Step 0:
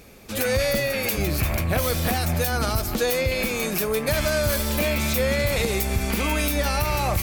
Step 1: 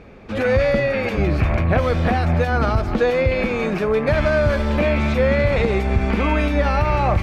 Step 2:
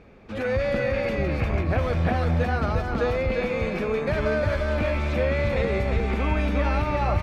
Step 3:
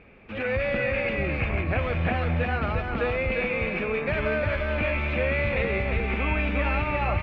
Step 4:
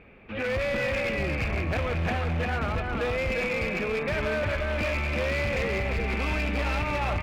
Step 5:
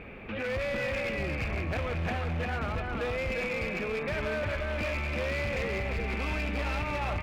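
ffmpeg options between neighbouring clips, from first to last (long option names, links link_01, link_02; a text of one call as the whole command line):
ffmpeg -i in.wav -af "lowpass=2000,volume=6dB" out.wav
ffmpeg -i in.wav -af "aecho=1:1:353:0.668,volume=-7.5dB" out.wav
ffmpeg -i in.wav -af "lowpass=frequency=2600:width_type=q:width=2.9,volume=-3dB" out.wav
ffmpeg -i in.wav -af "asoftclip=type=hard:threshold=-23.5dB" out.wav
ffmpeg -i in.wav -af "alimiter=level_in=11dB:limit=-24dB:level=0:latency=1,volume=-11dB,volume=7.5dB" out.wav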